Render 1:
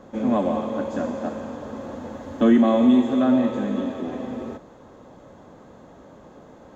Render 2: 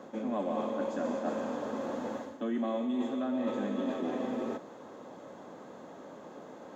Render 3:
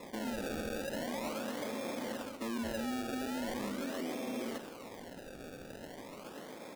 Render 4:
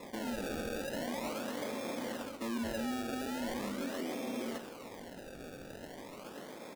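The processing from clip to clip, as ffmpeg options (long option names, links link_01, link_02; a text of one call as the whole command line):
ffmpeg -i in.wav -af "highpass=220,areverse,acompressor=threshold=-29dB:ratio=16,areverse" out.wav
ffmpeg -i in.wav -filter_complex "[0:a]alimiter=level_in=7dB:limit=-24dB:level=0:latency=1:release=56,volume=-7dB,acrusher=samples=29:mix=1:aa=0.000001:lfo=1:lforange=29:lforate=0.41,asplit=2[link_01][link_02];[link_02]adelay=134.1,volume=-13dB,highshelf=frequency=4000:gain=-3.02[link_03];[link_01][link_03]amix=inputs=2:normalize=0" out.wav
ffmpeg -i in.wav -filter_complex "[0:a]asplit=2[link_01][link_02];[link_02]adelay=21,volume=-12dB[link_03];[link_01][link_03]amix=inputs=2:normalize=0" out.wav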